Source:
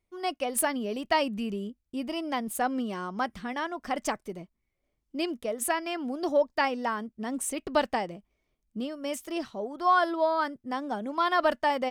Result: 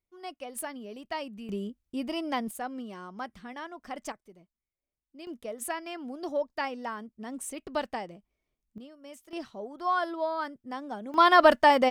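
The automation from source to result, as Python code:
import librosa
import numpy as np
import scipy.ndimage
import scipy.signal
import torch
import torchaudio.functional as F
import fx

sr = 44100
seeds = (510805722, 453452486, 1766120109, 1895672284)

y = fx.gain(x, sr, db=fx.steps((0.0, -10.0), (1.49, 0.0), (2.51, -8.0), (4.12, -15.5), (5.27, -6.0), (8.78, -14.0), (9.33, -5.0), (11.14, 6.5)))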